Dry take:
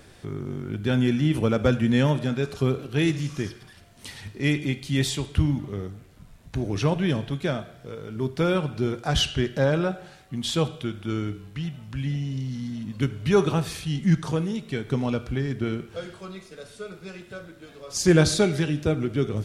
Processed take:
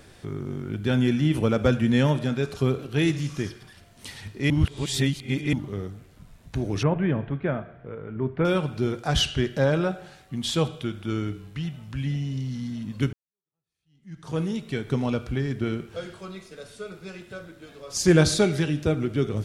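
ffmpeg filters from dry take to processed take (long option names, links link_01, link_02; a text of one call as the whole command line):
ffmpeg -i in.wav -filter_complex "[0:a]asettb=1/sr,asplit=3[link_01][link_02][link_03];[link_01]atrim=end=6.834[link_04];[link_02]atrim=start=6.83:end=8.45,asetpts=PTS-STARTPTS,afade=type=in:duration=0.004:curve=qsin,afade=type=out:start_time=1.616:duration=0.004:curve=qsin,lowpass=frequency=2200:width=0.5412,lowpass=frequency=2200:width=1.3066[link_05];[link_03]atrim=start=8.446[link_06];[link_04][link_05]acrossfade=duration=0.004:curve1=hsin:curve2=qsin[link_07];[link_07][link_06]acrossfade=duration=0.004:curve1=qsin:curve2=hsin,asplit=4[link_08][link_09][link_10][link_11];[link_08]atrim=end=4.502[link_12];[link_09]atrim=start=4.498:end=5.532,asetpts=PTS-STARTPTS,areverse[link_13];[link_10]atrim=start=5.528:end=13.13,asetpts=PTS-STARTPTS,afade=type=out:start_time=7.598:duration=0.004:curve=hsin[link_14];[link_11]atrim=start=13.13,asetpts=PTS-STARTPTS,afade=type=in:duration=1.26:curve=exp[link_15];[link_12][link_13]acrossfade=duration=0.004:curve1=hsin:curve2=hsin[link_16];[link_14][link_15]concat=n=2:v=0:a=1[link_17];[link_16][link_17]acrossfade=duration=0.004:curve1=hsin:curve2=hsin" out.wav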